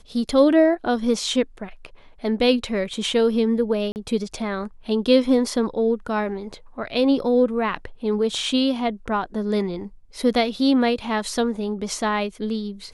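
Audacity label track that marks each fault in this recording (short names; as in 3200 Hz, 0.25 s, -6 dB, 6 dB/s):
3.920000	3.960000	gap 39 ms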